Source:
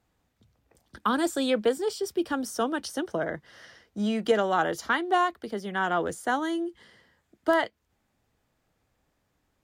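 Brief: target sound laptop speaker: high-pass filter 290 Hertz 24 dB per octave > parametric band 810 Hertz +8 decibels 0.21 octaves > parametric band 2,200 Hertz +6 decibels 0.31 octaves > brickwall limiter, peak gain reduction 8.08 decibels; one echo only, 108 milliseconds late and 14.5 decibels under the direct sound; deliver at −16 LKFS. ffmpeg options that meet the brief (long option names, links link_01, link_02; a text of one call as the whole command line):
ffmpeg -i in.wav -af "highpass=frequency=290:width=0.5412,highpass=frequency=290:width=1.3066,equalizer=frequency=810:width_type=o:width=0.21:gain=8,equalizer=frequency=2200:width_type=o:width=0.31:gain=6,aecho=1:1:108:0.188,volume=13.5dB,alimiter=limit=-4.5dB:level=0:latency=1" out.wav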